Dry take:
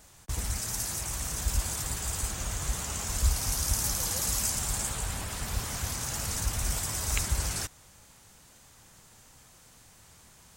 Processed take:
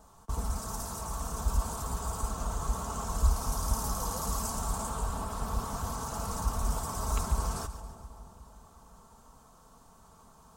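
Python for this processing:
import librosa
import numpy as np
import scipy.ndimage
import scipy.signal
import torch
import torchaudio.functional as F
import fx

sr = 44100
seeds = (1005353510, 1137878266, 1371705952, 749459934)

p1 = fx.high_shelf_res(x, sr, hz=1500.0, db=-9.5, q=3.0)
p2 = p1 + 0.49 * np.pad(p1, (int(4.5 * sr / 1000.0), 0))[:len(p1)]
y = p2 + fx.echo_split(p2, sr, split_hz=1100.0, low_ms=361, high_ms=139, feedback_pct=52, wet_db=-13, dry=0)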